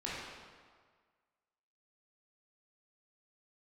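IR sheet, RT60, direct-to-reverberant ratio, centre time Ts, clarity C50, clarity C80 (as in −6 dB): 1.7 s, −8.0 dB, 110 ms, −2.5 dB, 0.0 dB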